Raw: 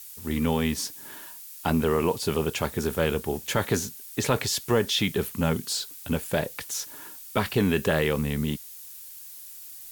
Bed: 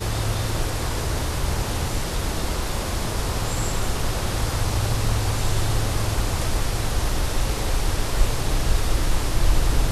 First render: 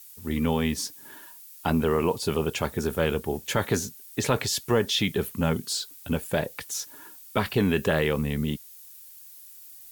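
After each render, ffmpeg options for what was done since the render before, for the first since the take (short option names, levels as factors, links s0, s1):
-af "afftdn=nr=6:nf=-44"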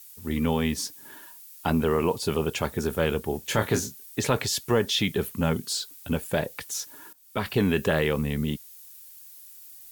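-filter_complex "[0:a]asettb=1/sr,asplit=3[s0][s1][s2];[s0]atrim=end=3.454[s3];[s1]atrim=start=3.45:end=4.12,asetpts=PTS-STARTPTS,afade=t=in:d=0.004:c=qsin,afade=t=out:st=0.666:d=0.004:c=qsin,asplit=2[s4][s5];[s5]adelay=27,volume=0.422[s6];[s4][s6]amix=inputs=2:normalize=0,atrim=end_sample=29547[s7];[s2]atrim=start=4.116[s8];[s3][s7]acrossfade=d=0.004:c1=hsin:c2=qsin[s9];[s9][s8]acrossfade=d=0.004:c1=qsin:c2=hsin,asplit=2[s10][s11];[s10]atrim=end=7.13,asetpts=PTS-STARTPTS,afade=t=out:st=7.126:d=0.004:c=hsin:silence=0.141254[s12];[s11]atrim=start=7.13,asetpts=PTS-STARTPTS,afade=t=in:d=0.43:silence=0.141254[s13];[s12][s13]concat=n=2:v=0:a=1"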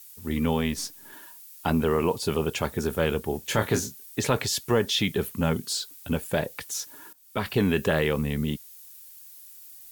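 -filter_complex "[0:a]asettb=1/sr,asplit=3[s0][s1][s2];[s0]atrim=end=0.614[s3];[s1]atrim=start=0.61:end=1.13,asetpts=PTS-STARTPTS,afade=t=in:d=0.004:c=qsin,afade=t=out:st=0.516:d=0.004:c=qsin,aeval=exprs='if(lt(val(0),0),0.708*val(0),val(0))':c=same[s4];[s2]atrim=start=1.126[s5];[s3][s4]acrossfade=d=0.004:c1=hsin:c2=qsin[s6];[s6][s5]acrossfade=d=0.004:c1=qsin:c2=hsin"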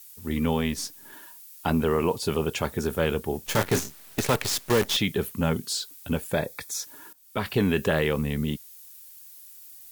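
-filter_complex "[0:a]asettb=1/sr,asplit=3[s0][s1][s2];[s0]atrim=end=3.464[s3];[s1]atrim=start=3.46:end=4.97,asetpts=PTS-STARTPTS,afade=t=in:d=0.004:c=qsin,afade=t=out:st=1.506:d=0.004:c=qsin,acrusher=bits=5:dc=4:mix=0:aa=0.000001[s4];[s2]atrim=start=4.966[s5];[s3][s4]acrossfade=d=0.004:c1=hsin:c2=qsin[s6];[s6][s5]acrossfade=d=0.004:c1=qsin:c2=hsin,asettb=1/sr,asplit=3[s7][s8][s9];[s7]atrim=end=6.334[s10];[s8]atrim=start=6.33:end=6.83,asetpts=PTS-STARTPTS,afade=t=in:d=0.004:c=qsin,afade=t=out:st=0.496:d=0.004:c=qsin,asuperstop=centerf=2900:order=12:qfactor=5.9[s11];[s9]atrim=start=6.826[s12];[s10][s11]acrossfade=d=0.004:c1=hsin:c2=qsin[s13];[s13][s12]acrossfade=d=0.004:c1=qsin:c2=hsin"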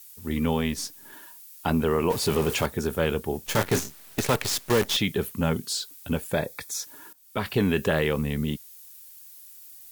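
-filter_complex "[0:a]asettb=1/sr,asplit=3[s0][s1][s2];[s0]atrim=end=2.104[s3];[s1]atrim=start=2.1:end=2.66,asetpts=PTS-STARTPTS,afade=t=in:d=0.004:c=qsin,afade=t=out:st=0.556:d=0.004:c=qsin,aeval=exprs='val(0)+0.5*0.0398*sgn(val(0))':c=same[s4];[s2]atrim=start=2.656[s5];[s3][s4]acrossfade=d=0.004:c1=hsin:c2=qsin[s6];[s6][s5]acrossfade=d=0.004:c1=qsin:c2=hsin"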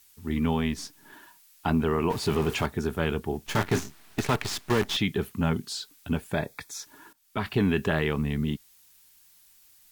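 -af "lowpass=f=3300:p=1,equalizer=f=520:t=o:w=0.25:g=-12.5"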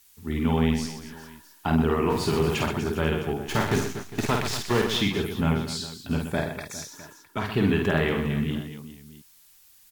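-af "aecho=1:1:50|125|237.5|406.2|659.4:0.631|0.398|0.251|0.158|0.1"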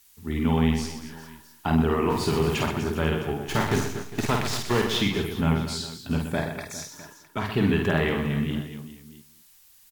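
-filter_complex "[0:a]asplit=2[s0][s1];[s1]adelay=49,volume=0.2[s2];[s0][s2]amix=inputs=2:normalize=0,asplit=2[s3][s4];[s4]adelay=209.9,volume=0.141,highshelf=f=4000:g=-4.72[s5];[s3][s5]amix=inputs=2:normalize=0"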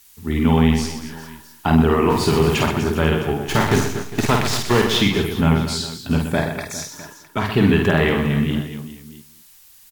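-af "volume=2.24,alimiter=limit=0.708:level=0:latency=1"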